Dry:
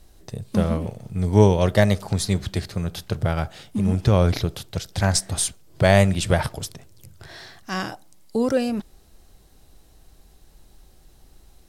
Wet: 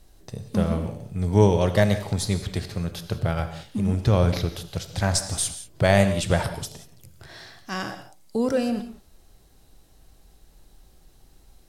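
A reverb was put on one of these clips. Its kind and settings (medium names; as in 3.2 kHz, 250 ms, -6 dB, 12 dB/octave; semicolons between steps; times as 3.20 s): gated-style reverb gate 210 ms flat, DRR 9 dB; trim -2.5 dB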